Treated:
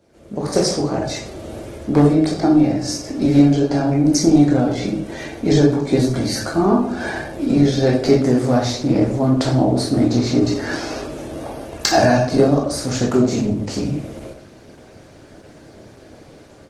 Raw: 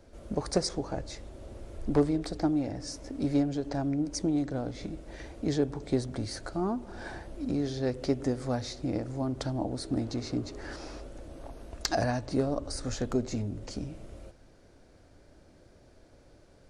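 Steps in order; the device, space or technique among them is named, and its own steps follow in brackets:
far-field microphone of a smart speaker (convolution reverb RT60 0.55 s, pre-delay 14 ms, DRR −2.5 dB; high-pass filter 110 Hz 12 dB per octave; automatic gain control gain up to 14 dB; Opus 16 kbit/s 48,000 Hz)

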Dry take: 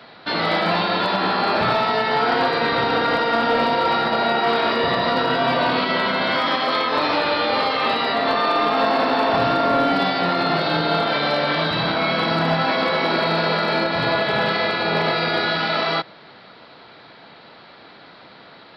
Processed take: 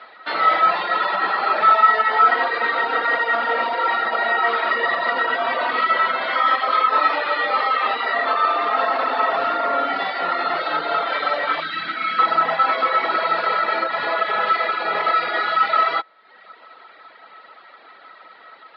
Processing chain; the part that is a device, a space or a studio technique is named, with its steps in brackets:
tin-can telephone (band-pass filter 510–3,100 Hz; hollow resonant body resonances 1,300/1,900 Hz, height 17 dB, ringing for 95 ms)
reverb reduction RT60 0.78 s
0:11.60–0:12.19: flat-topped bell 700 Hz −15 dB

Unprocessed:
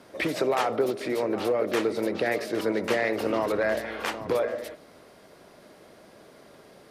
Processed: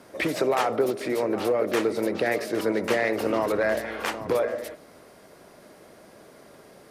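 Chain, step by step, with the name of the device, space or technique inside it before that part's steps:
exciter from parts (in parallel at −6 dB: high-pass filter 2,500 Hz 12 dB per octave + soft clipping −38.5 dBFS, distortion −7 dB + high-pass filter 3,800 Hz 12 dB per octave)
on the sum: level +1.5 dB

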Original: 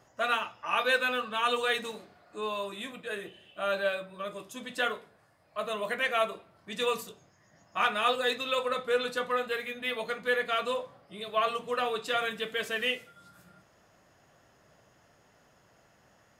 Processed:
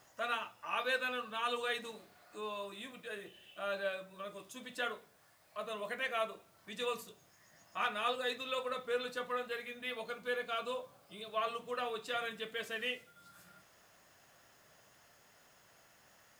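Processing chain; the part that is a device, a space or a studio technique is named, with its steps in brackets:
0:10.08–0:11.36: notch filter 1,900 Hz, Q 5.8
noise-reduction cassette on a plain deck (one half of a high-frequency compander encoder only; tape wow and flutter 9.4 cents; white noise bed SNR 31 dB)
level −8 dB

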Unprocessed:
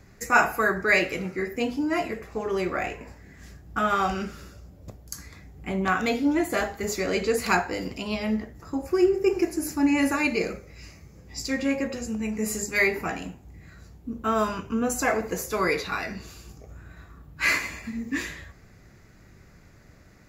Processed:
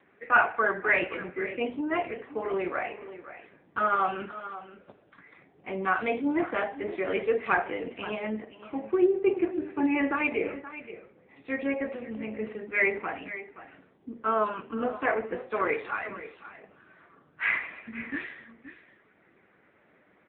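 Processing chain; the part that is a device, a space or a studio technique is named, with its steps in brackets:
0:10.58–0:11.36: low-pass filter 2,800 Hz 12 dB per octave
satellite phone (band-pass filter 330–3,100 Hz; single-tap delay 524 ms −14 dB; AMR narrowband 6.7 kbit/s 8,000 Hz)

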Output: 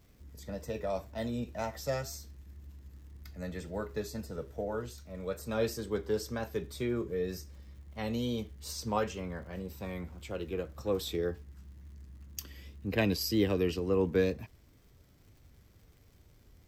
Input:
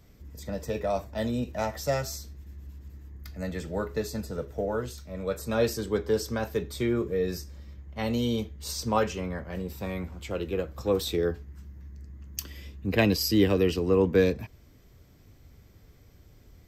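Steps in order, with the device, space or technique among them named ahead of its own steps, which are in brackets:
vinyl LP (tape wow and flutter; surface crackle 140 per second −49 dBFS; pink noise bed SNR 42 dB)
level −6 dB

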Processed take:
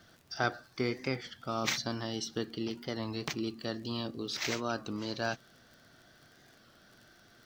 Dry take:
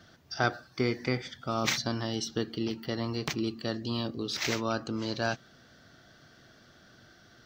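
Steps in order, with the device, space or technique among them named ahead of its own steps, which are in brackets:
warped LP (wow of a warped record 33 1/3 rpm, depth 100 cents; surface crackle 43 per second −44 dBFS; pink noise bed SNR 34 dB)
low-shelf EQ 140 Hz −4.5 dB
level −3 dB

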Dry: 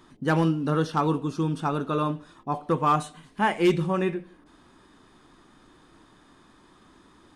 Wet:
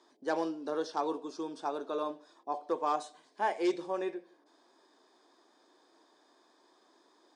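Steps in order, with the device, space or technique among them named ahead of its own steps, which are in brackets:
phone speaker on a table (loudspeaker in its box 350–8,000 Hz, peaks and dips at 660 Hz +4 dB, 1,300 Hz −9 dB, 2,000 Hz −5 dB, 2,800 Hz −10 dB, 5,000 Hz +5 dB)
level −6 dB

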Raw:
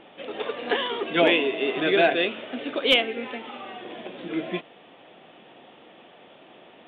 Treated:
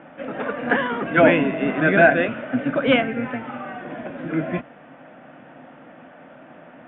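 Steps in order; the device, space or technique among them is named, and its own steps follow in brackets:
sub-octave bass pedal (sub-octave generator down 1 octave, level −4 dB; loudspeaker in its box 76–2,200 Hz, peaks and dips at 96 Hz −8 dB, 150 Hz +4 dB, 260 Hz +10 dB, 400 Hz −9 dB, 590 Hz +5 dB, 1,500 Hz +9 dB)
level +3.5 dB

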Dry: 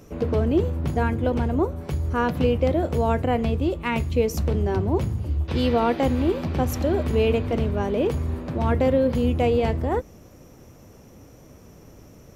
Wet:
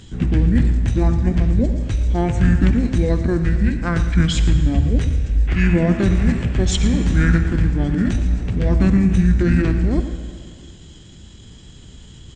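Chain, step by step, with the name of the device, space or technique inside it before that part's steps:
monster voice (pitch shifter −5.5 semitones; formants moved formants −4.5 semitones; low-shelf EQ 230 Hz +8 dB; single-tap delay 113 ms −14 dB; convolution reverb RT60 2.1 s, pre-delay 47 ms, DRR 9.5 dB)
flat-topped bell 4,000 Hz +11 dB 2.8 octaves

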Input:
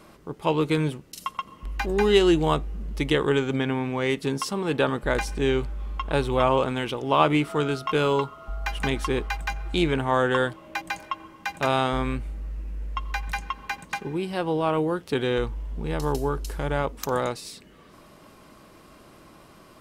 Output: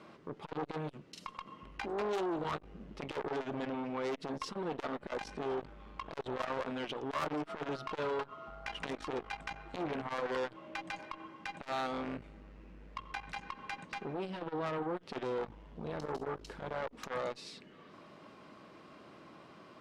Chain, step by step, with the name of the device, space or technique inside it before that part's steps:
valve radio (band-pass filter 140–4,100 Hz; tube saturation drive 25 dB, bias 0.25; saturating transformer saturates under 660 Hz)
level −3 dB

